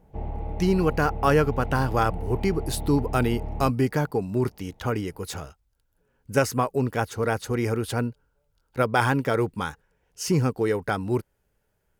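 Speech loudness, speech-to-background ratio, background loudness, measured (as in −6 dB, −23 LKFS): −25.5 LKFS, 9.0 dB, −34.5 LKFS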